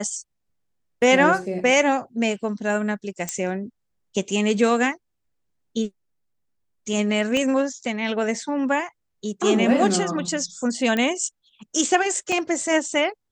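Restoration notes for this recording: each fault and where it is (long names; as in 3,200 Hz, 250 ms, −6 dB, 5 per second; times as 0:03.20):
0:03.29: click −12 dBFS
0:07.37: click −13 dBFS
0:10.97: click −12 dBFS
0:12.32: drop-out 3 ms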